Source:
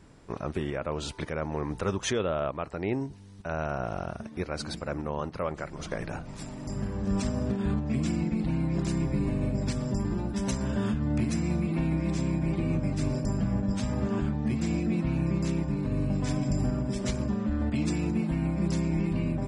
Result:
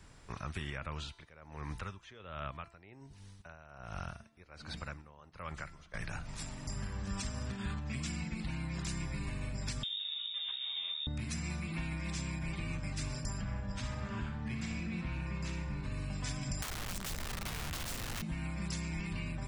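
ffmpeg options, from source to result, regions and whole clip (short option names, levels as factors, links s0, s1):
-filter_complex "[0:a]asettb=1/sr,asplit=3[s0][s1][s2];[s0]atrim=end=0.954[s3];[s1]atrim=start=0.95:end=5.94,asetpts=PTS-STARTPTS,afade=t=in:d=0.004:c=qsin,afade=t=out:st=4.986:d=0.004:c=qsin,acrossover=split=3800[s4][s5];[s5]acompressor=threshold=0.002:ratio=4:attack=1:release=60[s6];[s4][s6]amix=inputs=2:normalize=0,aeval=exprs='val(0)*pow(10,-21*(0.5-0.5*cos(2*PI*1.3*n/s))/20)':c=same[s7];[s2]atrim=start=5.936[s8];[s3][s7]acrossfade=d=0.004:c1=hsin:c2=qsin[s9];[s9][s8]acrossfade=d=0.004:c1=qsin:c2=hsin,asettb=1/sr,asplit=3[s10][s11][s12];[s10]atrim=end=9.834[s13];[s11]atrim=start=9.83:end=11.07,asetpts=PTS-STARTPTS,afade=t=in:d=0.004:c=qsin,afade=t=out:st=1.236:d=0.004:c=qsin,acrossover=split=2700[s14][s15];[s15]acompressor=threshold=0.00224:ratio=4:attack=1:release=60[s16];[s14][s16]amix=inputs=2:normalize=0,lowpass=f=3200:t=q:w=0.5098,lowpass=f=3200:t=q:w=0.6013,lowpass=f=3200:t=q:w=0.9,lowpass=f=3200:t=q:w=2.563,afreqshift=-3800[s17];[s12]atrim=start=11.066[s18];[s13][s17]acrossfade=d=0.004:c1=hsin:c2=qsin[s19];[s19][s18]acrossfade=d=0.004:c1=qsin:c2=hsin,asettb=1/sr,asplit=3[s20][s21][s22];[s20]atrim=end=13.414[s23];[s21]atrim=start=13.41:end=15.84,asetpts=PTS-STARTPTS,afade=t=in:d=0.004:c=qsin,afade=t=out:st=2.426:d=0.004:c=qsin,lowpass=f=2500:p=1,aecho=1:1:63|126|189|252|315:0.422|0.186|0.0816|0.0359|0.0158,atrim=end_sample=107163[s24];[s22]atrim=start=15.836[s25];[s23][s24]acrossfade=d=0.004:c1=hsin:c2=qsin[s26];[s26][s25]acrossfade=d=0.004:c1=qsin:c2=hsin,asettb=1/sr,asplit=3[s27][s28][s29];[s27]atrim=end=16.624[s30];[s28]atrim=start=16.62:end=18.22,asetpts=PTS-STARTPTS,afade=t=in:d=0.004:c=qsin,afade=t=out:st=1.596:d=0.004:c=qsin,asubboost=boost=5.5:cutoff=61,aeval=exprs='(mod(21.1*val(0)+1,2)-1)/21.1':c=same[s31];[s29]atrim=start=18.216[s32];[s30][s31]acrossfade=d=0.004:c1=hsin:c2=qsin[s33];[s33][s32]acrossfade=d=0.004:c1=qsin:c2=hsin,equalizer=f=300:w=0.44:g=-11.5,bandreject=f=338:t=h:w=4,bandreject=f=676:t=h:w=4,bandreject=f=1014:t=h:w=4,bandreject=f=1352:t=h:w=4,bandreject=f=1690:t=h:w=4,bandreject=f=2028:t=h:w=4,bandreject=f=2366:t=h:w=4,bandreject=f=2704:t=h:w=4,bandreject=f=3042:t=h:w=4,bandreject=f=3380:t=h:w=4,bandreject=f=3718:t=h:w=4,bandreject=f=4056:t=h:w=4,bandreject=f=4394:t=h:w=4,bandreject=f=4732:t=h:w=4,bandreject=f=5070:t=h:w=4,bandreject=f=5408:t=h:w=4,bandreject=f=5746:t=h:w=4,bandreject=f=6084:t=h:w=4,bandreject=f=6422:t=h:w=4,bandreject=f=6760:t=h:w=4,bandreject=f=7098:t=h:w=4,bandreject=f=7436:t=h:w=4,bandreject=f=7774:t=h:w=4,bandreject=f=8112:t=h:w=4,bandreject=f=8450:t=h:w=4,bandreject=f=8788:t=h:w=4,bandreject=f=9126:t=h:w=4,bandreject=f=9464:t=h:w=4,bandreject=f=9802:t=h:w=4,bandreject=f=10140:t=h:w=4,acrossover=split=270|1000[s34][s35][s36];[s34]acompressor=threshold=0.0112:ratio=4[s37];[s35]acompressor=threshold=0.00141:ratio=4[s38];[s36]acompressor=threshold=0.00794:ratio=4[s39];[s37][s38][s39]amix=inputs=3:normalize=0,volume=1.33"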